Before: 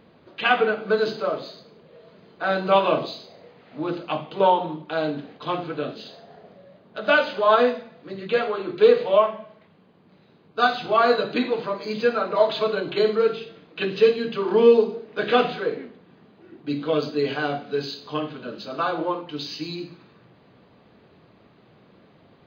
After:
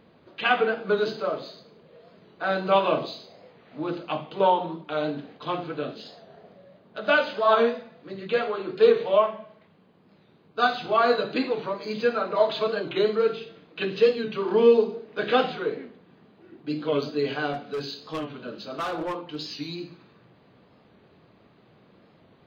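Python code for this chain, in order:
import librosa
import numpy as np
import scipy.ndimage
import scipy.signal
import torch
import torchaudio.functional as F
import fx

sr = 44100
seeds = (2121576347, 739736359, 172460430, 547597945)

y = fx.clip_hard(x, sr, threshold_db=-23.5, at=(17.53, 19.36))
y = fx.record_warp(y, sr, rpm=45.0, depth_cents=100.0)
y = F.gain(torch.from_numpy(y), -2.5).numpy()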